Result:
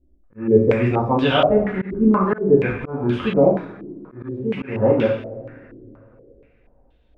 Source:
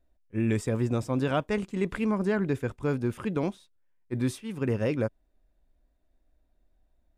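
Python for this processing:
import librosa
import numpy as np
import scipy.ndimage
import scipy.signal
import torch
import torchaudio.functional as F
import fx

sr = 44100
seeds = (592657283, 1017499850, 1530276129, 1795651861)

y = fx.rev_double_slope(x, sr, seeds[0], early_s=0.59, late_s=3.3, knee_db=-21, drr_db=-5.0)
y = fx.auto_swell(y, sr, attack_ms=248.0)
y = fx.filter_held_lowpass(y, sr, hz=4.2, low_hz=330.0, high_hz=3300.0)
y = y * 10.0 ** (3.0 / 20.0)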